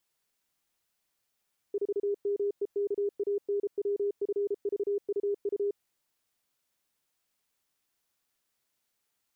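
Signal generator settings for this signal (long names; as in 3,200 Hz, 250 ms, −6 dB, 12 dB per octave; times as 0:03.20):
Morse code "4MEKANWFVUU" 33 words per minute 405 Hz −26 dBFS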